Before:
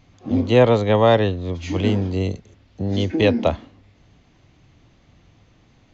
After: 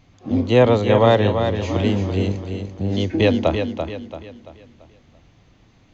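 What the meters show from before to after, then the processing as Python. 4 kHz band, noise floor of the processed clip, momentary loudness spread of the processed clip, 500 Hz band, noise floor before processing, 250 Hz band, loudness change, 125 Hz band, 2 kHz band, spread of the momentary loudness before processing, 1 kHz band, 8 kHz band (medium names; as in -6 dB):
+1.0 dB, -55 dBFS, 14 LU, +1.0 dB, -56 dBFS, +1.0 dB, 0.0 dB, +1.0 dB, +1.0 dB, 12 LU, +1.0 dB, no reading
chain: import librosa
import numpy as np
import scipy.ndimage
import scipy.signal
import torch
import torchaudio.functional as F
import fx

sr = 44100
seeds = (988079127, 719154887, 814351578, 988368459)

y = fx.echo_feedback(x, sr, ms=338, feedback_pct=40, wet_db=-7.0)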